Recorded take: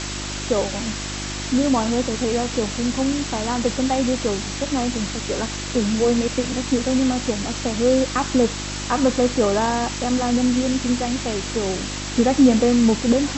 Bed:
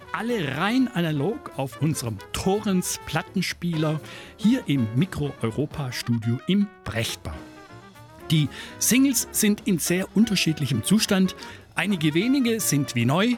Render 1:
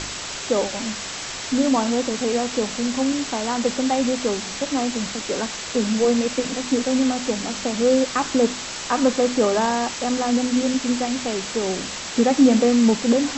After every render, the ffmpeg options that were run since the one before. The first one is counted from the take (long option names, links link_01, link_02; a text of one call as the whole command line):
ffmpeg -i in.wav -af "bandreject=frequency=50:width_type=h:width=4,bandreject=frequency=100:width_type=h:width=4,bandreject=frequency=150:width_type=h:width=4,bandreject=frequency=200:width_type=h:width=4,bandreject=frequency=250:width_type=h:width=4,bandreject=frequency=300:width_type=h:width=4,bandreject=frequency=350:width_type=h:width=4" out.wav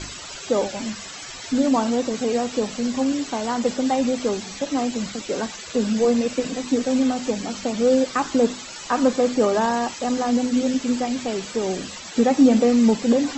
ffmpeg -i in.wav -af "afftdn=noise_reduction=14:noise_floor=-32" out.wav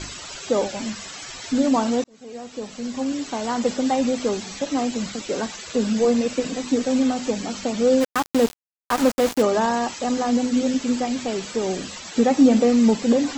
ffmpeg -i in.wav -filter_complex "[0:a]asplit=3[link_01][link_02][link_03];[link_01]afade=type=out:start_time=8:duration=0.02[link_04];[link_02]aeval=exprs='val(0)*gte(abs(val(0)),0.075)':channel_layout=same,afade=type=in:start_time=8:duration=0.02,afade=type=out:start_time=9.41:duration=0.02[link_05];[link_03]afade=type=in:start_time=9.41:duration=0.02[link_06];[link_04][link_05][link_06]amix=inputs=3:normalize=0,asplit=2[link_07][link_08];[link_07]atrim=end=2.04,asetpts=PTS-STARTPTS,afade=type=out:start_time=2.036:duration=0.004:curve=hsin[link_09];[link_08]atrim=start=2.04,asetpts=PTS-STARTPTS,afade=type=in:duration=1.53[link_10];[link_09][link_10]concat=n=2:v=0:a=1" out.wav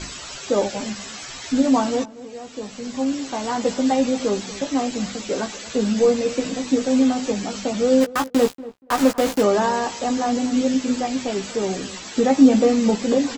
ffmpeg -i in.wav -filter_complex "[0:a]asplit=2[link_01][link_02];[link_02]adelay=15,volume=-6dB[link_03];[link_01][link_03]amix=inputs=2:normalize=0,asplit=2[link_04][link_05];[link_05]adelay=237,lowpass=frequency=1300:poles=1,volume=-17dB,asplit=2[link_06][link_07];[link_07]adelay=237,lowpass=frequency=1300:poles=1,volume=0.16[link_08];[link_04][link_06][link_08]amix=inputs=3:normalize=0" out.wav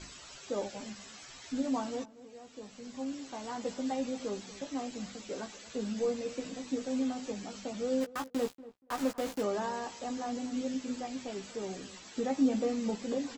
ffmpeg -i in.wav -af "volume=-15dB" out.wav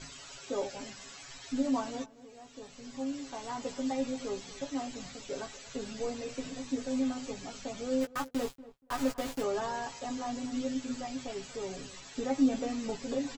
ffmpeg -i in.wav -af "asubboost=boost=4:cutoff=110,aecho=1:1:7.2:0.67" out.wav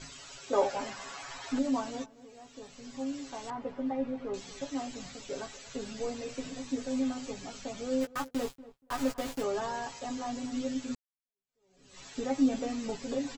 ffmpeg -i in.wav -filter_complex "[0:a]asettb=1/sr,asplit=3[link_01][link_02][link_03];[link_01]atrim=end=0.534[link_04];[link_02]atrim=start=0.53:end=1.59,asetpts=PTS-STARTPTS,afade=type=in:duration=0.004:curve=qsin,afade=type=out:start_time=1.056:duration=0.004:curve=qsin,equalizer=frequency=950:width=0.65:gain=12.5[link_05];[link_03]atrim=start=1.586[link_06];[link_04][link_05]acrossfade=duration=0.004:curve1=hsin:curve2=qsin[link_07];[link_07][link_06]acrossfade=duration=0.004:curve1=qsin:curve2=hsin,asettb=1/sr,asplit=3[link_08][link_09][link_10];[link_08]atrim=end=3.504[link_11];[link_09]atrim=start=3.5:end=4.34,asetpts=PTS-STARTPTS,afade=type=in:duration=0.004:curve=qsin,afade=type=out:start_time=0.836:duration=0.004:curve=qsin,lowpass=1700[link_12];[link_10]atrim=start=4.336[link_13];[link_11][link_12]acrossfade=duration=0.004:curve1=hsin:curve2=qsin[link_14];[link_14][link_13]acrossfade=duration=0.004:curve1=qsin:curve2=hsin,asplit=2[link_15][link_16];[link_15]atrim=end=10.95,asetpts=PTS-STARTPTS,afade=type=out:start_time=10.946:duration=0.004:curve=hsin[link_17];[link_16]atrim=start=10.95,asetpts=PTS-STARTPTS,afade=type=in:duration=1.06:curve=exp[link_18];[link_17][link_18]concat=n=2:v=0:a=1" out.wav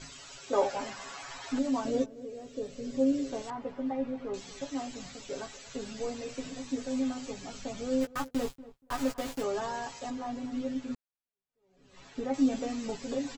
ffmpeg -i in.wav -filter_complex "[0:a]asettb=1/sr,asplit=3[link_01][link_02][link_03];[link_01]atrim=end=1.854[link_04];[link_02]atrim=start=1.85:end=3.42,asetpts=PTS-STARTPTS,afade=type=in:duration=0.004:curve=qsin,afade=type=out:start_time=1.566:duration=0.004:curve=qsin,lowshelf=frequency=670:width_type=q:width=3:gain=7.5[link_05];[link_03]atrim=start=3.416[link_06];[link_04][link_05]acrossfade=duration=0.004:curve1=hsin:curve2=qsin[link_07];[link_07][link_06]acrossfade=duration=0.004:curve1=qsin:curve2=hsin,asettb=1/sr,asplit=3[link_08][link_09][link_10];[link_08]atrim=end=7.494[link_11];[link_09]atrim=start=7.49:end=8.96,asetpts=PTS-STARTPTS,afade=type=in:duration=0.004:curve=qsin,afade=type=out:start_time=1.466:duration=0.004:curve=qsin,lowshelf=frequency=180:gain=6[link_12];[link_10]atrim=start=8.956[link_13];[link_11][link_12]acrossfade=duration=0.004:curve1=hsin:curve2=qsin[link_14];[link_14][link_13]acrossfade=duration=0.004:curve1=qsin:curve2=hsin,asettb=1/sr,asplit=3[link_15][link_16][link_17];[link_15]atrim=end=10.104[link_18];[link_16]atrim=start=10.1:end=12.34,asetpts=PTS-STARTPTS,afade=type=in:duration=0.004:curve=qsin,afade=type=out:start_time=2.236:duration=0.004:curve=qsin,aemphasis=mode=reproduction:type=75kf[link_19];[link_17]atrim=start=12.336[link_20];[link_18][link_19]acrossfade=duration=0.004:curve1=hsin:curve2=qsin[link_21];[link_21][link_20]acrossfade=duration=0.004:curve1=qsin:curve2=hsin" out.wav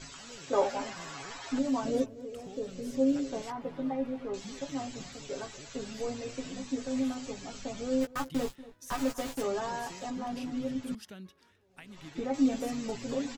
ffmpeg -i in.wav -i bed.wav -filter_complex "[1:a]volume=-26.5dB[link_01];[0:a][link_01]amix=inputs=2:normalize=0" out.wav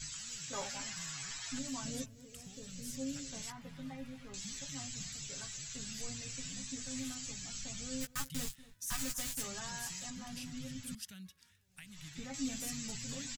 ffmpeg -i in.wav -af "firequalizer=gain_entry='entry(160,0);entry(330,-21);entry(1700,-3);entry(7500,8)':delay=0.05:min_phase=1" out.wav